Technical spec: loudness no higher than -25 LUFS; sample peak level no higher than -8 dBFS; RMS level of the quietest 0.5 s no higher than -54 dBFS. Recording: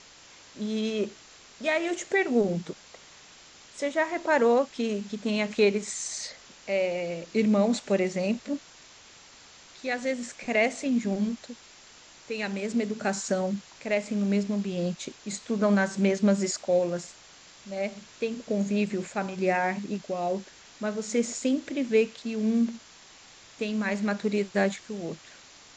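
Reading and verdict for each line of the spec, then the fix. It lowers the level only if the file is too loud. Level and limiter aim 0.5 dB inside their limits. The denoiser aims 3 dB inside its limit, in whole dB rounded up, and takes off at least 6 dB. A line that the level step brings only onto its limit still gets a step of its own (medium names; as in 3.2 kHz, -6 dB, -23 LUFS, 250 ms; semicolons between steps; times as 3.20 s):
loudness -28.0 LUFS: pass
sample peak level -11.5 dBFS: pass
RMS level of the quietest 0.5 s -52 dBFS: fail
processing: noise reduction 6 dB, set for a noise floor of -52 dBFS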